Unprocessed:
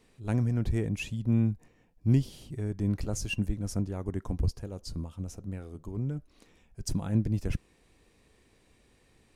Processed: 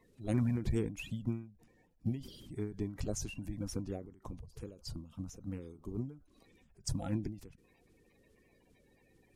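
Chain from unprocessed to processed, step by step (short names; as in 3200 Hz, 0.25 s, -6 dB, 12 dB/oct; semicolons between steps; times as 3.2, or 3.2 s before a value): bin magnitudes rounded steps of 30 dB; ending taper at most 120 dB/s; gain -3 dB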